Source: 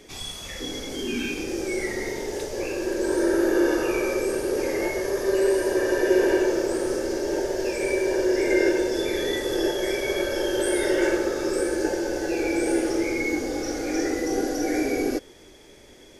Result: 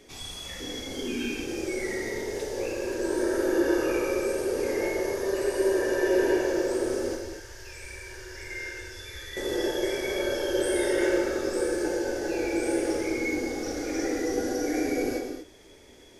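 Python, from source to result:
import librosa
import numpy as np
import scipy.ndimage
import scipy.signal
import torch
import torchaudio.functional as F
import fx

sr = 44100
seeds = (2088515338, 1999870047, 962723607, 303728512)

y = fx.curve_eq(x, sr, hz=(100.0, 190.0, 650.0, 1300.0), db=(0, -23, -22, -5), at=(7.15, 9.37))
y = fx.rev_gated(y, sr, seeds[0], gate_ms=270, shape='flat', drr_db=2.5)
y = F.gain(torch.from_numpy(y), -5.0).numpy()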